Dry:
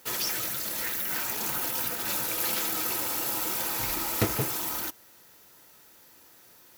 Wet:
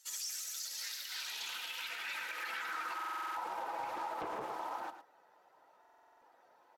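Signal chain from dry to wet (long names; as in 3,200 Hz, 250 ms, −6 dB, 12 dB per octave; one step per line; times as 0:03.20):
spectral magnitudes quantised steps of 15 dB
high-shelf EQ 6,100 Hz −4 dB
band-pass filter sweep 7,000 Hz → 770 Hz, 0:00.37–0:03.69
low-shelf EQ 410 Hz −6 dB
single-tap delay 110 ms −10 dB
brickwall limiter −35.5 dBFS, peak gain reduction 8.5 dB
buffer that repeats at 0:02.95/0:05.80, samples 2,048, times 8
highs frequency-modulated by the lows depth 0.49 ms
level +4.5 dB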